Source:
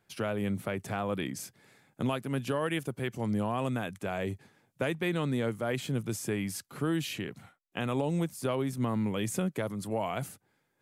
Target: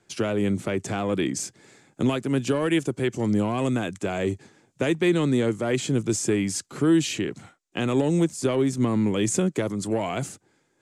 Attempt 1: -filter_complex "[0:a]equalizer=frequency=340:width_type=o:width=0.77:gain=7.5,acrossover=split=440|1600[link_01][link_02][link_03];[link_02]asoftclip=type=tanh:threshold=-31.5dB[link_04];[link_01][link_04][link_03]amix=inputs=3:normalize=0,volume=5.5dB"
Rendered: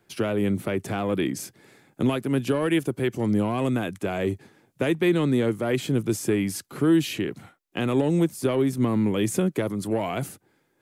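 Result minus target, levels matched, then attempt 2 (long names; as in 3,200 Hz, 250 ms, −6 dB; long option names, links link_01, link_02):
8,000 Hz band −5.5 dB
-filter_complex "[0:a]lowpass=frequency=7300:width_type=q:width=2.7,equalizer=frequency=340:width_type=o:width=0.77:gain=7.5,acrossover=split=440|1600[link_01][link_02][link_03];[link_02]asoftclip=type=tanh:threshold=-31.5dB[link_04];[link_01][link_04][link_03]amix=inputs=3:normalize=0,volume=5.5dB"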